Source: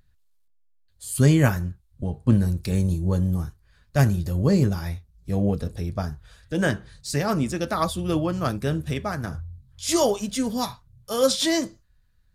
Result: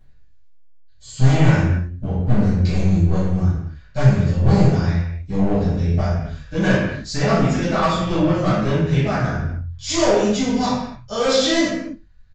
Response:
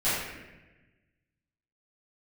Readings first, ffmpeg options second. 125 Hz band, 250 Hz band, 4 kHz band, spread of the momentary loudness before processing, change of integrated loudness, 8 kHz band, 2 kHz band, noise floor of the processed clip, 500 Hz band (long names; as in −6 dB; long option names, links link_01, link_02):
+6.0 dB, +5.0 dB, +4.5 dB, 13 LU, +5.0 dB, +0.5 dB, +6.5 dB, −45 dBFS, +5.0 dB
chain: -filter_complex "[0:a]acontrast=69,aresample=16000,asoftclip=type=hard:threshold=-13dB,aresample=44100[link_01];[1:a]atrim=start_sample=2205,afade=type=out:start_time=0.36:duration=0.01,atrim=end_sample=16317[link_02];[link_01][link_02]afir=irnorm=-1:irlink=0,volume=-11dB"